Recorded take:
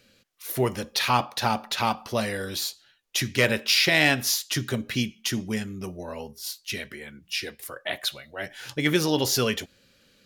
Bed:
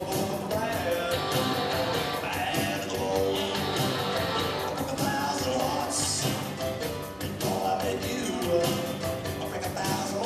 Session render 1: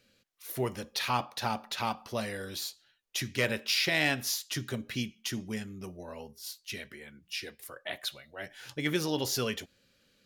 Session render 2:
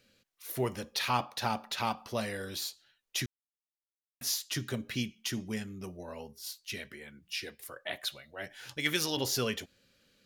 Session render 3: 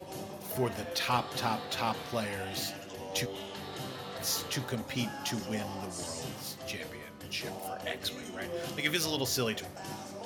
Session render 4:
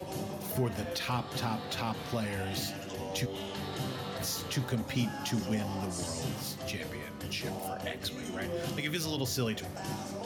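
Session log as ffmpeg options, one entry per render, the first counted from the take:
ffmpeg -i in.wav -af "volume=-7.5dB" out.wav
ffmpeg -i in.wav -filter_complex "[0:a]asettb=1/sr,asplit=3[link_01][link_02][link_03];[link_01]atrim=end=8.774[link_04];[link_02]atrim=start=8.77:end=9.17,asetpts=PTS-STARTPTS,afade=type=in:duration=0.004:curve=qsin,afade=type=out:start_time=0.396:duration=0.004:curve=qsin,tiltshelf=frequency=1200:gain=-6[link_05];[link_03]atrim=start=9.166[link_06];[link_04][link_05]acrossfade=duration=0.004:curve1=hsin:curve2=qsin[link_07];[link_07][link_06]acrossfade=duration=0.004:curve1=qsin:curve2=hsin,asplit=3[link_08][link_09][link_10];[link_08]atrim=end=3.26,asetpts=PTS-STARTPTS,afade=type=out:start_time=3.256:duration=0.004:curve=hsin[link_11];[link_09]atrim=start=3.26:end=4.21,asetpts=PTS-STARTPTS,volume=0[link_12];[link_10]atrim=start=4.21,asetpts=PTS-STARTPTS,afade=type=in:duration=0.004:curve=hsin[link_13];[link_11][link_12][link_13]concat=n=3:v=0:a=1" out.wav
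ffmpeg -i in.wav -i bed.wav -filter_complex "[1:a]volume=-13dB[link_01];[0:a][link_01]amix=inputs=2:normalize=0" out.wav
ffmpeg -i in.wav -filter_complex "[0:a]asplit=2[link_01][link_02];[link_02]alimiter=level_in=2dB:limit=-24dB:level=0:latency=1:release=286,volume=-2dB,volume=2.5dB[link_03];[link_01][link_03]amix=inputs=2:normalize=0,acrossover=split=260[link_04][link_05];[link_05]acompressor=threshold=-47dB:ratio=1.5[link_06];[link_04][link_06]amix=inputs=2:normalize=0" out.wav

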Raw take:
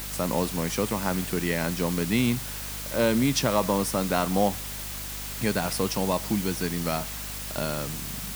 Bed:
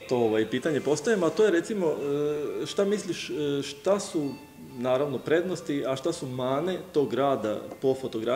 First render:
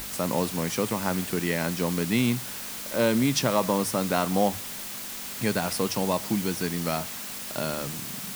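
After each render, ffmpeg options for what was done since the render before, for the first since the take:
ffmpeg -i in.wav -af "bandreject=frequency=50:width_type=h:width=6,bandreject=frequency=100:width_type=h:width=6,bandreject=frequency=150:width_type=h:width=6" out.wav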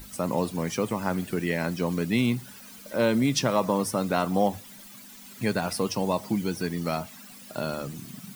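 ffmpeg -i in.wav -af "afftdn=noise_reduction=14:noise_floor=-37" out.wav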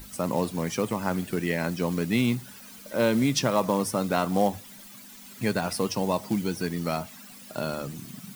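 ffmpeg -i in.wav -af "acrusher=bits=5:mode=log:mix=0:aa=0.000001" out.wav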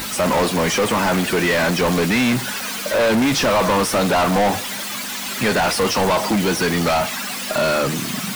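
ffmpeg -i in.wav -filter_complex "[0:a]asplit=2[link_01][link_02];[link_02]highpass=frequency=720:poles=1,volume=35dB,asoftclip=type=tanh:threshold=-9.5dB[link_03];[link_01][link_03]amix=inputs=2:normalize=0,lowpass=frequency=3600:poles=1,volume=-6dB" out.wav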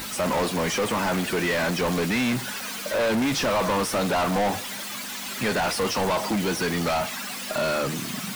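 ffmpeg -i in.wav -af "volume=-6.5dB" out.wav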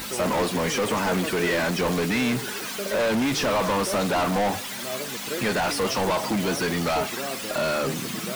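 ffmpeg -i in.wav -i bed.wav -filter_complex "[1:a]volume=-9dB[link_01];[0:a][link_01]amix=inputs=2:normalize=0" out.wav

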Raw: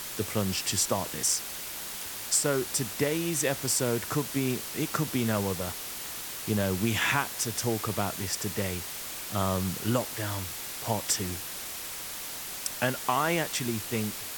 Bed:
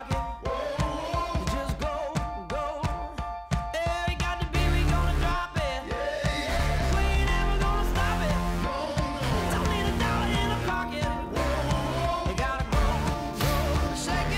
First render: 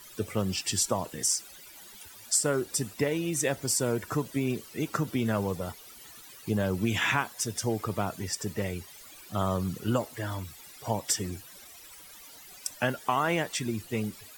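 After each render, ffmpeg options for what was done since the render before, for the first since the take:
ffmpeg -i in.wav -af "afftdn=noise_reduction=16:noise_floor=-38" out.wav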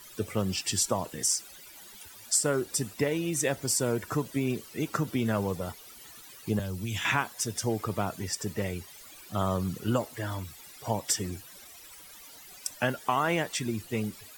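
ffmpeg -i in.wav -filter_complex "[0:a]asettb=1/sr,asplit=3[link_01][link_02][link_03];[link_01]atrim=end=6.594[link_04];[link_02]atrim=start=6.59:end=7.05,asetpts=PTS-STARTPTS,afade=type=in:duration=0.004:curve=qsin,afade=type=out:start_time=0.456:duration=0.004:curve=qsin,acrossover=split=140|3000[link_05][link_06][link_07];[link_06]acompressor=threshold=-47dB:ratio=2:attack=3.2:release=140:knee=2.83:detection=peak[link_08];[link_05][link_08][link_07]amix=inputs=3:normalize=0[link_09];[link_03]atrim=start=7.046[link_10];[link_04][link_09]acrossfade=duration=0.004:curve1=hsin:curve2=qsin[link_11];[link_11][link_10]acrossfade=duration=0.004:curve1=qsin:curve2=hsin,asettb=1/sr,asplit=3[link_12][link_13][link_14];[link_12]atrim=end=8.674[link_15];[link_13]atrim=start=8.67:end=9.24,asetpts=PTS-STARTPTS,afade=type=in:duration=0.004:curve=qsin,afade=type=out:start_time=0.566:duration=0.004:curve=qsin,acrusher=bits=9:mode=log:mix=0:aa=0.000001[link_16];[link_14]atrim=start=9.236[link_17];[link_15][link_16]acrossfade=duration=0.004:curve1=hsin:curve2=qsin[link_18];[link_18][link_17]acrossfade=duration=0.004:curve1=qsin:curve2=hsin" out.wav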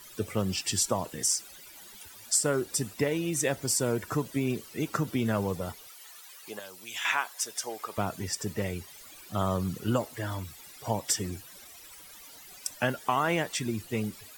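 ffmpeg -i in.wav -filter_complex "[0:a]asettb=1/sr,asplit=3[link_01][link_02][link_03];[link_01]atrim=end=5.874[link_04];[link_02]atrim=start=5.87:end=7.98,asetpts=PTS-STARTPTS,afade=type=in:duration=0.004:curve=qsin,afade=type=out:start_time=2.106:duration=0.004:curve=qsin,highpass=660[link_05];[link_03]atrim=start=7.976[link_06];[link_04][link_05]acrossfade=duration=0.004:curve1=hsin:curve2=qsin[link_07];[link_07][link_06]acrossfade=duration=0.004:curve1=qsin:curve2=hsin" out.wav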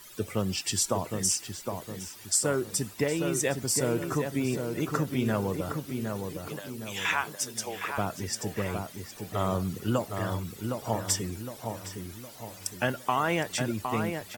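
ffmpeg -i in.wav -filter_complex "[0:a]asplit=2[link_01][link_02];[link_02]adelay=762,lowpass=frequency=1900:poles=1,volume=-5dB,asplit=2[link_03][link_04];[link_04]adelay=762,lowpass=frequency=1900:poles=1,volume=0.46,asplit=2[link_05][link_06];[link_06]adelay=762,lowpass=frequency=1900:poles=1,volume=0.46,asplit=2[link_07][link_08];[link_08]adelay=762,lowpass=frequency=1900:poles=1,volume=0.46,asplit=2[link_09][link_10];[link_10]adelay=762,lowpass=frequency=1900:poles=1,volume=0.46,asplit=2[link_11][link_12];[link_12]adelay=762,lowpass=frequency=1900:poles=1,volume=0.46[link_13];[link_01][link_03][link_05][link_07][link_09][link_11][link_13]amix=inputs=7:normalize=0" out.wav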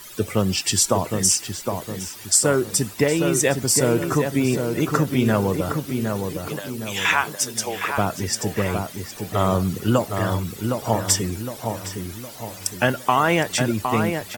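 ffmpeg -i in.wav -af "volume=8.5dB" out.wav

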